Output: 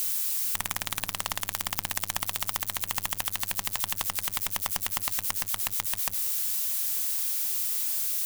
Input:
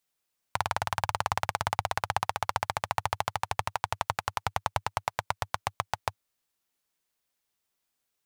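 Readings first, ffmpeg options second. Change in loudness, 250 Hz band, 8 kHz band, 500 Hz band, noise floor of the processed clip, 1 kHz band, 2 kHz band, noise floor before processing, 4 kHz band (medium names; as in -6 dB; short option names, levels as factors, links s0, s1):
+5.0 dB, +2.0 dB, +14.0 dB, -9.0 dB, -43 dBFS, -9.0 dB, -1.0 dB, -82 dBFS, +5.5 dB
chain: -af "aeval=exprs='val(0)+0.5*0.0668*sgn(val(0))':c=same,equalizer=f=72:w=2.8:g=9.5,aeval=exprs='0.473*(cos(1*acos(clip(val(0)/0.473,-1,1)))-cos(1*PI/2))+0.0299*(cos(3*acos(clip(val(0)/0.473,-1,1)))-cos(3*PI/2))+0.0473*(cos(6*acos(clip(val(0)/0.473,-1,1)))-cos(6*PI/2))+0.0841*(cos(7*acos(clip(val(0)/0.473,-1,1)))-cos(7*PI/2))':c=same,crystalizer=i=7.5:c=0,volume=0.266"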